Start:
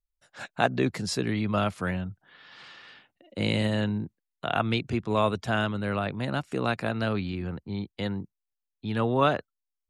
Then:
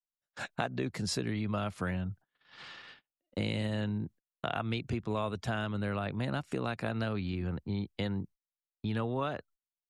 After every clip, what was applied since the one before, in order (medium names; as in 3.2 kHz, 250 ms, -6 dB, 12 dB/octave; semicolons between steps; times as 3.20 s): gate -49 dBFS, range -33 dB; bass shelf 84 Hz +7 dB; compression, threshold -30 dBFS, peak gain reduction 13 dB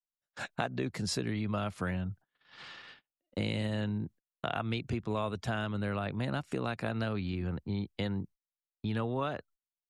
no audible change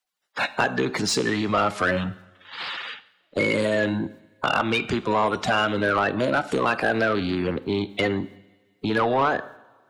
coarse spectral quantiser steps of 30 dB; two-slope reverb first 0.72 s, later 2.1 s, from -18 dB, DRR 14.5 dB; overdrive pedal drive 19 dB, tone 3.8 kHz, clips at -16 dBFS; trim +6 dB